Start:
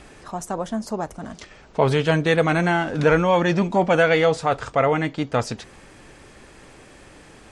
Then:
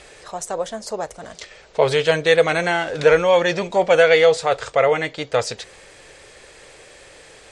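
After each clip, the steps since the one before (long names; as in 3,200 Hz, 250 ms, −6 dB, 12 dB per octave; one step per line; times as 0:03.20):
octave-band graphic EQ 250/500/2,000/4,000/8,000 Hz −9/+12/+7/+9/+10 dB
level −5 dB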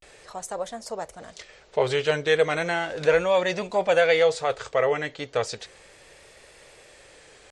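pitch vibrato 0.35 Hz 81 cents
level −6 dB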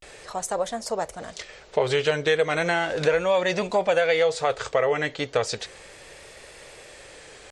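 downward compressor 3 to 1, threshold −25 dBFS, peak gain reduction 8.5 dB
level +5.5 dB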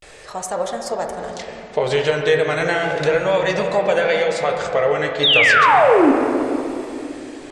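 sound drawn into the spectrogram fall, 0:05.23–0:06.12, 250–3,900 Hz −16 dBFS
on a send at −2 dB: convolution reverb RT60 3.0 s, pre-delay 6 ms
on the sum: level +2 dB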